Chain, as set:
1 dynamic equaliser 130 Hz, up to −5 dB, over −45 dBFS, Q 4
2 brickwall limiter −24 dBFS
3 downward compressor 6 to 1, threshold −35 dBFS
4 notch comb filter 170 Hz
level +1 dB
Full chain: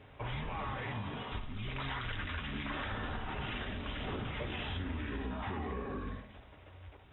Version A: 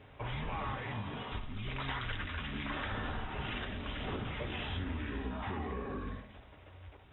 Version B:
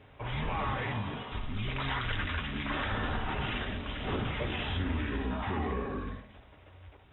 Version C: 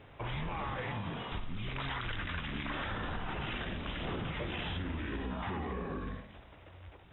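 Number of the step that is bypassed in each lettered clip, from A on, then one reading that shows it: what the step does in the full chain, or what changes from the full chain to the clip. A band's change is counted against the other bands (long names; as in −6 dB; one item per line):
2, average gain reduction 1.5 dB
3, average gain reduction 4.0 dB
4, change in integrated loudness +1.0 LU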